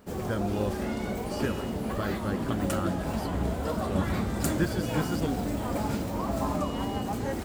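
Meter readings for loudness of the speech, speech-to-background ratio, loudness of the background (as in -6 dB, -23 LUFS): -35.0 LUFS, -4.0 dB, -31.0 LUFS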